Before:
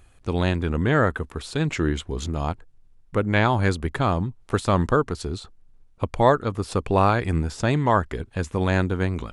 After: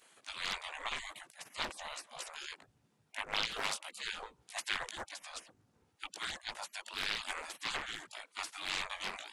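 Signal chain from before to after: chorus voices 4, 0.7 Hz, delay 19 ms, depth 1.2 ms; spectral gate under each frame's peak -30 dB weak; loudspeaker Doppler distortion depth 0.64 ms; trim +6.5 dB

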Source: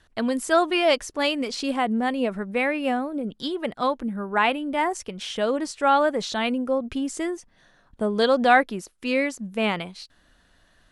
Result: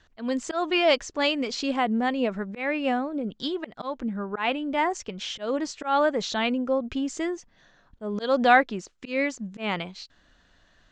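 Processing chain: elliptic low-pass 7.1 kHz, stop band 60 dB; slow attack 164 ms

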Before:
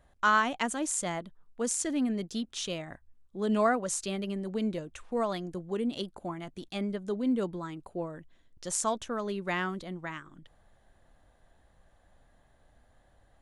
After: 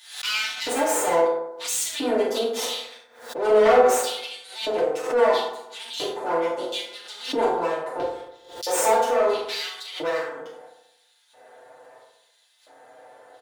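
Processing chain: comb filter that takes the minimum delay 7.9 ms; hum notches 50/100/150/200/250/300/350/400/450 Hz; LFO high-pass square 0.75 Hz 510–3700 Hz; in parallel at -1 dB: compression, threshold -45 dBFS, peak gain reduction 23 dB; on the sum: saturation -24.5 dBFS, distortion -11 dB; on a send: early reflections 42 ms -9 dB, 70 ms -10 dB; on the sum: FDN reverb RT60 0.84 s, low-frequency decay 1×, high-frequency decay 0.4×, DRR -8 dB; swell ahead of each attack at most 100 dB/s; trim +1 dB

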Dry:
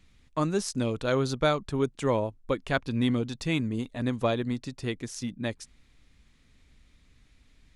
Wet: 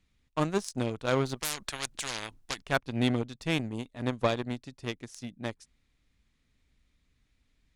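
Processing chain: Chebyshev shaper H 7 -20 dB, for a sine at -12 dBFS; 1.35–2.62 s: spectrum-flattening compressor 10:1

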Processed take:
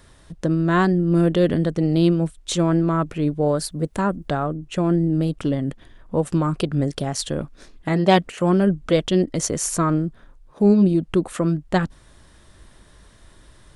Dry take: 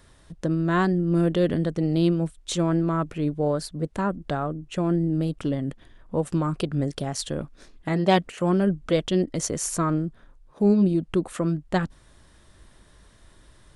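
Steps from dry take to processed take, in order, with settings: 3.48–4.28 s: treble shelf 9.6 kHz +10.5 dB; trim +4 dB

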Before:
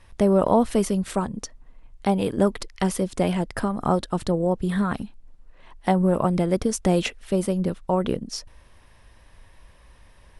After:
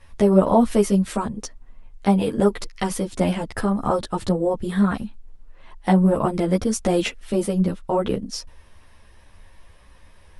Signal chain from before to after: three-phase chorus; trim +4.5 dB

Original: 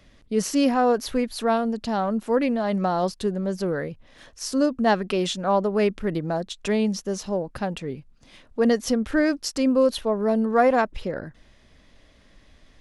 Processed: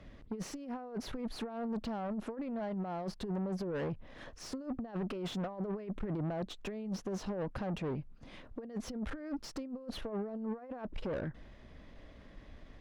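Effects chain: compressor with a negative ratio -28 dBFS, ratio -0.5; valve stage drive 30 dB, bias 0.25; low-pass 1.3 kHz 6 dB/octave; trim -2.5 dB

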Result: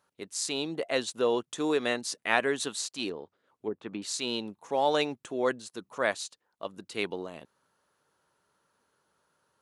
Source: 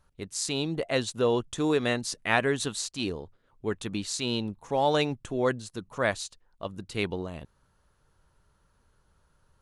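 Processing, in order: high-pass 270 Hz 12 dB/octave; 3.09–4.02 s: low-pass that closes with the level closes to 520 Hz, closed at -27.5 dBFS; trim -1 dB

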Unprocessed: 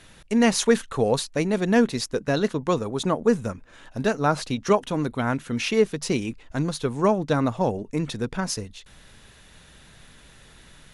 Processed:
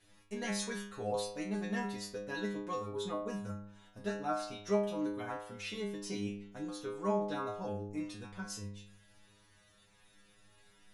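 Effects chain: inharmonic resonator 100 Hz, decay 0.78 s, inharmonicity 0.002

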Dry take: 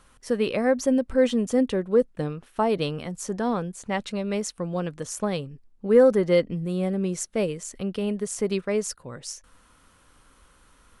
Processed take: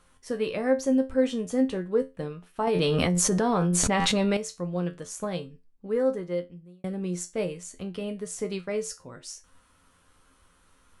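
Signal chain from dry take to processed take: feedback comb 88 Hz, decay 0.23 s, harmonics all, mix 80%; 2.67–4.37 s: level flattener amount 100%; 5.39–6.84 s: fade out; trim +2 dB

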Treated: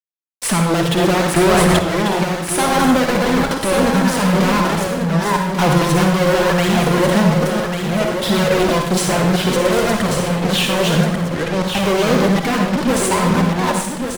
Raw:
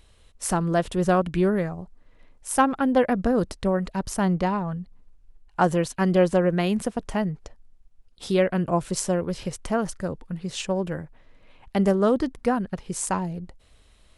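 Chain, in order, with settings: chunks repeated in reverse 447 ms, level -4.5 dB; high-pass 130 Hz 12 dB/octave; resonant high shelf 4.6 kHz -7.5 dB, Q 1.5; band-stop 760 Hz, Q 15; fuzz box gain 39 dB, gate -43 dBFS; flange 0.6 Hz, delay 0.5 ms, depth 6.6 ms, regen +26%; delay 1141 ms -6.5 dB; reverberation RT60 0.70 s, pre-delay 42 ms, DRR 3 dB; 1.36–1.79 s: level flattener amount 100%; trim +1 dB

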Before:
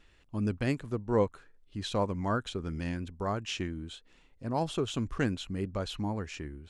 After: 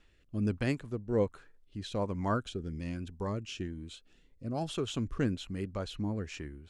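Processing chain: rotary cabinet horn 1.2 Hz; 2.34–4.69 s: Shepard-style phaser rising 1.9 Hz

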